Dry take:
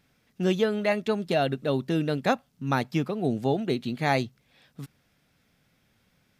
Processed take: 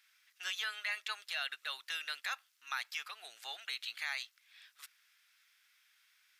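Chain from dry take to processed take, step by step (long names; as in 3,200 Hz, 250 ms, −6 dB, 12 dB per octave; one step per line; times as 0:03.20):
high-pass filter 1,400 Hz 24 dB per octave
brickwall limiter −28 dBFS, peak gain reduction 10.5 dB
level +2 dB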